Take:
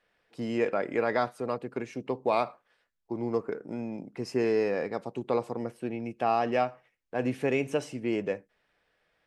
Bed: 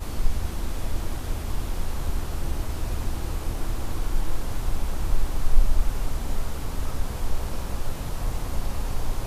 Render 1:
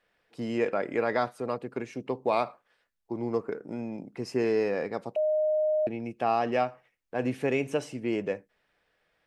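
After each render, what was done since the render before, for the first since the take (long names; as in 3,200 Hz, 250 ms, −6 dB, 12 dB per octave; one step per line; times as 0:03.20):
0:05.16–0:05.87: beep over 616 Hz −22.5 dBFS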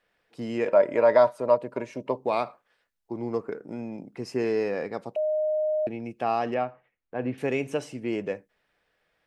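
0:00.67–0:02.17: hollow resonant body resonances 600/950 Hz, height 17 dB, ringing for 60 ms
0:06.54–0:07.38: high-frequency loss of the air 320 metres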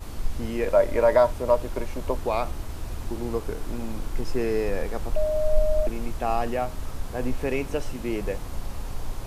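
mix in bed −5 dB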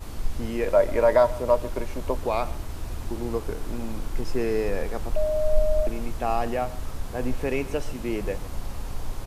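single-tap delay 136 ms −19.5 dB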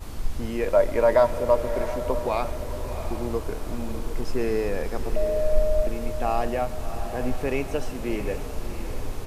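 feedback delay with all-pass diffusion 688 ms, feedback 44%, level −10 dB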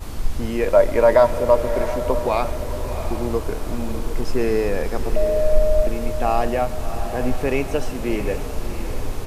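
level +5 dB
brickwall limiter −3 dBFS, peak gain reduction 1 dB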